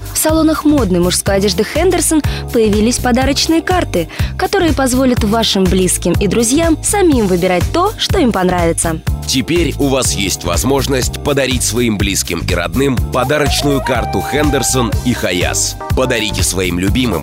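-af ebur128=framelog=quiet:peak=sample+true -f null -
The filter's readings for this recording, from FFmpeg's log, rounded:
Integrated loudness:
  I:         -13.2 LUFS
  Threshold: -23.2 LUFS
Loudness range:
  LRA:         2.0 LU
  Threshold: -33.2 LUFS
  LRA low:   -14.0 LUFS
  LRA high:  -12.1 LUFS
Sample peak:
  Peak:       -3.2 dBFS
True peak:
  Peak:       -2.5 dBFS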